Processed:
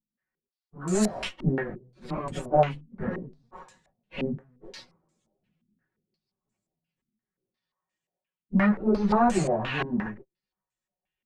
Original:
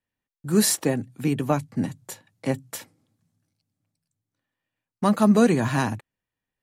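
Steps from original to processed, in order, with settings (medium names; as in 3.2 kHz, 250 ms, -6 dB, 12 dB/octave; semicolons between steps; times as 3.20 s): comb filter that takes the minimum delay 5.4 ms; plain phase-vocoder stretch 1.7×; step-sequenced low-pass 5.7 Hz 250–7500 Hz; trim -1.5 dB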